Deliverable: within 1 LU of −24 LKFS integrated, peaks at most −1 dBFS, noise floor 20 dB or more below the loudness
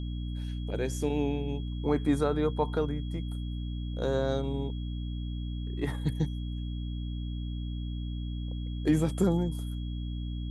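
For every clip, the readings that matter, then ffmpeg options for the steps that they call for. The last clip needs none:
mains hum 60 Hz; hum harmonics up to 300 Hz; level of the hum −32 dBFS; interfering tone 3,300 Hz; level of the tone −51 dBFS; integrated loudness −32.0 LKFS; sample peak −13.5 dBFS; target loudness −24.0 LKFS
→ -af "bandreject=frequency=60:width_type=h:width=4,bandreject=frequency=120:width_type=h:width=4,bandreject=frequency=180:width_type=h:width=4,bandreject=frequency=240:width_type=h:width=4,bandreject=frequency=300:width_type=h:width=4"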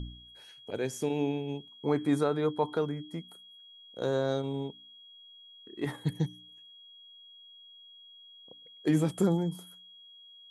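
mains hum none found; interfering tone 3,300 Hz; level of the tone −51 dBFS
→ -af "bandreject=frequency=3300:width=30"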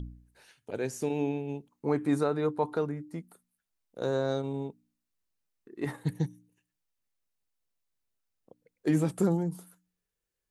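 interfering tone none found; integrated loudness −31.5 LKFS; sample peak −15.0 dBFS; target loudness −24.0 LKFS
→ -af "volume=7.5dB"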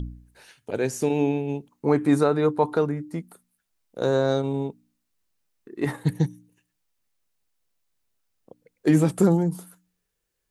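integrated loudness −24.0 LKFS; sample peak −7.5 dBFS; background noise floor −78 dBFS

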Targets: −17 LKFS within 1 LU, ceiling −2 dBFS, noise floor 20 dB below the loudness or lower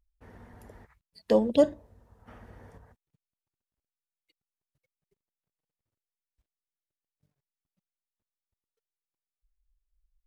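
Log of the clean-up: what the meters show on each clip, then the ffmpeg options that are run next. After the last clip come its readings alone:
integrated loudness −25.0 LKFS; sample peak −8.5 dBFS; target loudness −17.0 LKFS
→ -af "volume=8dB,alimiter=limit=-2dB:level=0:latency=1"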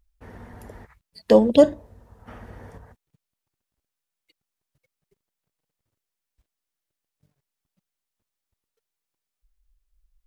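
integrated loudness −17.5 LKFS; sample peak −2.0 dBFS; background noise floor −86 dBFS

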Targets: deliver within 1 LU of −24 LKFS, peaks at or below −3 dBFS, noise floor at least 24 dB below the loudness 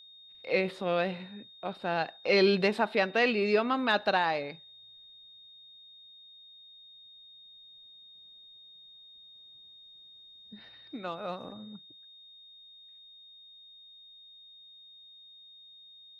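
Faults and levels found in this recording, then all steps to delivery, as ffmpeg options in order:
interfering tone 3,700 Hz; level of the tone −51 dBFS; integrated loudness −29.0 LKFS; sample peak −12.5 dBFS; target loudness −24.0 LKFS
→ -af "bandreject=frequency=3700:width=30"
-af "volume=5dB"

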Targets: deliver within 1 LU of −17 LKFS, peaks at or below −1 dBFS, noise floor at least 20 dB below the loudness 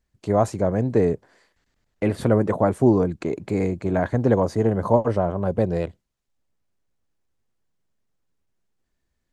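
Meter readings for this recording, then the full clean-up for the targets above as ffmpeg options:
integrated loudness −22.0 LKFS; sample peak −3.5 dBFS; target loudness −17.0 LKFS
→ -af "volume=5dB,alimiter=limit=-1dB:level=0:latency=1"

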